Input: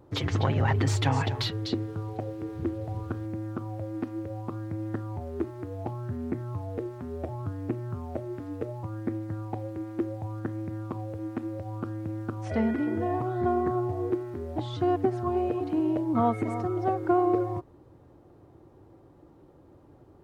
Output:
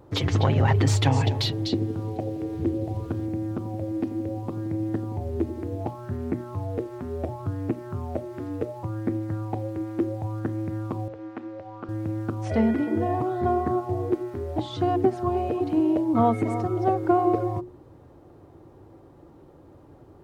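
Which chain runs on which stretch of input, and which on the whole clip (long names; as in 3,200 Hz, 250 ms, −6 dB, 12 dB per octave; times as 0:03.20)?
0:01.08–0:05.81: parametric band 1,300 Hz −7 dB 0.82 octaves + delay with a low-pass on its return 86 ms, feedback 71%, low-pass 500 Hz, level −9 dB
0:11.08–0:11.89: high-pass filter 670 Hz 6 dB per octave + high-frequency loss of the air 180 metres
whole clip: mains-hum notches 60/120/180/240/300/360 Hz; dynamic equaliser 1,500 Hz, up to −4 dB, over −47 dBFS, Q 1.1; level +5 dB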